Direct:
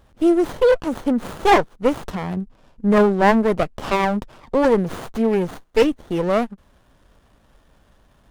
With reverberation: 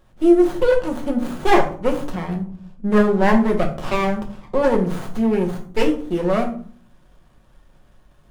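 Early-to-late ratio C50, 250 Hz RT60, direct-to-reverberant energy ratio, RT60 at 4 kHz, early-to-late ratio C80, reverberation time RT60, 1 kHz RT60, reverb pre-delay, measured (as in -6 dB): 10.5 dB, 0.75 s, 1.5 dB, 0.30 s, 14.5 dB, 0.50 s, 0.45 s, 5 ms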